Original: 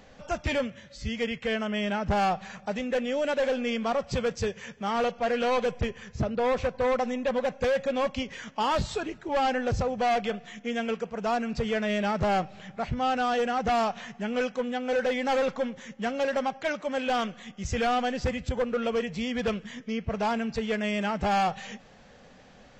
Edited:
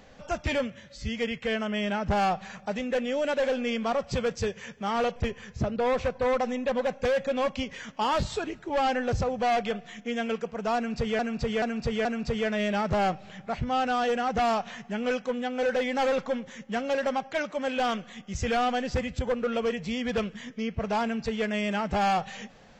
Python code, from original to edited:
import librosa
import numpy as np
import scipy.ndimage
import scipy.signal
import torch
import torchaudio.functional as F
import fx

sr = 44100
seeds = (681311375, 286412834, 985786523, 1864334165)

y = fx.edit(x, sr, fx.cut(start_s=5.16, length_s=0.59),
    fx.repeat(start_s=11.35, length_s=0.43, count=4), tone=tone)